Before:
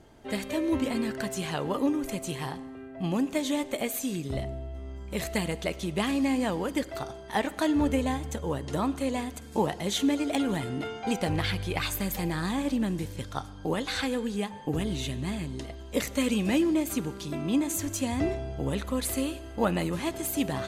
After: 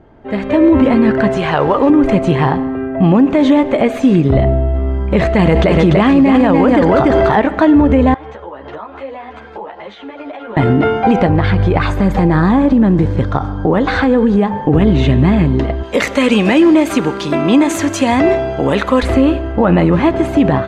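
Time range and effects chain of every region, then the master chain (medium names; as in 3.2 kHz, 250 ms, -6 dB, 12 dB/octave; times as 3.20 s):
1.37–1.90 s: peaking EQ 220 Hz -12 dB 1.3 oct + short-mantissa float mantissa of 2-bit
5.39–7.36 s: treble shelf 6.8 kHz +5.5 dB + delay 292 ms -5 dB + level flattener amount 70%
8.14–10.57 s: three-band isolator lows -20 dB, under 460 Hz, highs -17 dB, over 4.9 kHz + compression, threshold -45 dBFS + three-phase chorus
11.26–14.67 s: peaking EQ 2.6 kHz -5.5 dB 0.93 oct + compression 5:1, threshold -30 dBFS
15.83–19.03 s: RIAA curve recording + overload inside the chain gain 9.5 dB
whole clip: low-pass 1.7 kHz 12 dB/octave; level rider gain up to 14 dB; loudness maximiser +11 dB; trim -1.5 dB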